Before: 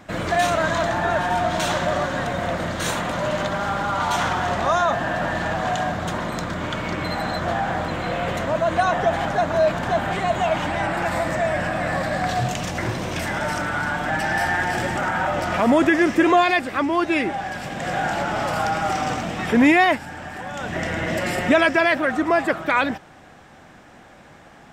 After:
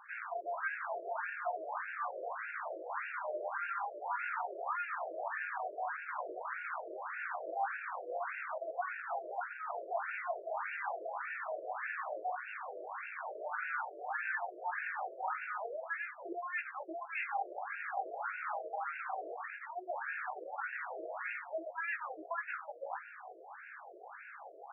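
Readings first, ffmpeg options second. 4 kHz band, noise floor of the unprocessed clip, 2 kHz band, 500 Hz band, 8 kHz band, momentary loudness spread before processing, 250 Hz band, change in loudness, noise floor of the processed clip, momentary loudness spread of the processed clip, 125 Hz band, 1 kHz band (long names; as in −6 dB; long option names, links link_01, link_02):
below −35 dB, −47 dBFS, −15.5 dB, −19.5 dB, below −40 dB, 9 LU, −35.0 dB, −18.0 dB, −52 dBFS, 6 LU, below −40 dB, −16.0 dB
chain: -af "areverse,acompressor=threshold=-33dB:ratio=10,areverse,aeval=exprs='(tanh(39.8*val(0)+0.75)-tanh(0.75))/39.8':channel_layout=same,flanger=delay=17.5:depth=2.4:speed=0.43,highpass=360,equalizer=frequency=590:width_type=q:width=4:gain=-6,equalizer=frequency=2000:width_type=q:width=4:gain=-3,equalizer=frequency=3800:width_type=q:width=4:gain=3,lowpass=frequency=5500:width=0.5412,lowpass=frequency=5500:width=1.3066,afftfilt=real='re*between(b*sr/1024,470*pow(2000/470,0.5+0.5*sin(2*PI*1.7*pts/sr))/1.41,470*pow(2000/470,0.5+0.5*sin(2*PI*1.7*pts/sr))*1.41)':imag='im*between(b*sr/1024,470*pow(2000/470,0.5+0.5*sin(2*PI*1.7*pts/sr))/1.41,470*pow(2000/470,0.5+0.5*sin(2*PI*1.7*pts/sr))*1.41)':win_size=1024:overlap=0.75,volume=11dB"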